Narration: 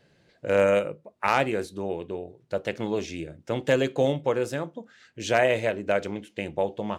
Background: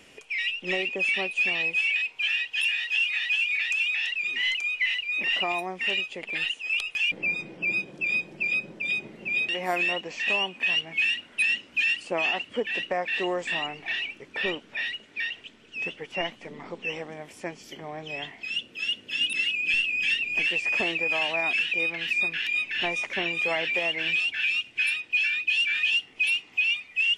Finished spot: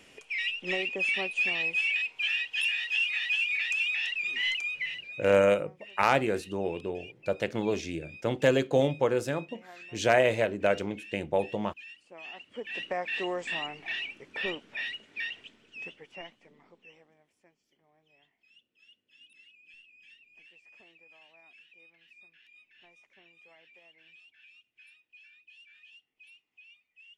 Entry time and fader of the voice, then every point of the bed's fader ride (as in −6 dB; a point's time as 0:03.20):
4.75 s, −1.0 dB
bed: 0:04.59 −3 dB
0:05.57 −23 dB
0:12.06 −23 dB
0:12.88 −4.5 dB
0:15.42 −4.5 dB
0:17.58 −31.5 dB